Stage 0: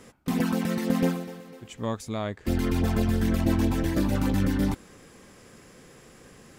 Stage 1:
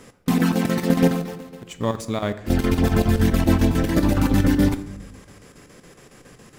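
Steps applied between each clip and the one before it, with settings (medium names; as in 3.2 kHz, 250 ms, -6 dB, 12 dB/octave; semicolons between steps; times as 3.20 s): square tremolo 7.2 Hz, depth 65%, duty 75%; in parallel at -7.5 dB: small samples zeroed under -37 dBFS; on the sum: reverberation RT60 0.95 s, pre-delay 7 ms, DRR 11 dB; trim +4 dB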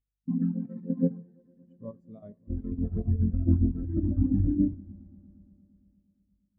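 hum 50 Hz, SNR 23 dB; echo with a slow build-up 115 ms, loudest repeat 5, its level -16.5 dB; spectral contrast expander 2.5:1; trim -7 dB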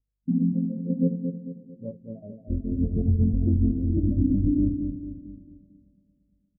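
steep low-pass 640 Hz 36 dB/octave; peak limiter -19.5 dBFS, peak gain reduction 7.5 dB; feedback delay 223 ms, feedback 45%, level -7 dB; trim +5 dB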